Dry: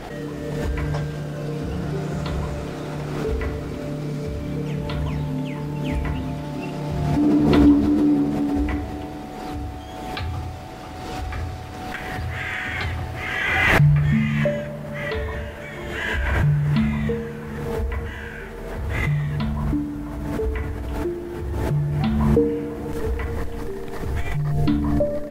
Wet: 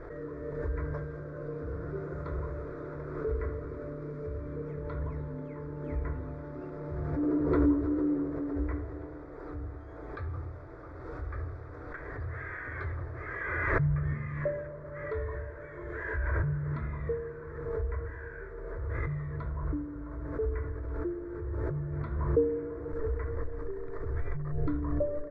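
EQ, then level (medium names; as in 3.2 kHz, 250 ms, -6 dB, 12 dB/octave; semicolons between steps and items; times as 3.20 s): low-pass 1.6 kHz 12 dB/octave; static phaser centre 780 Hz, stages 6; -6.0 dB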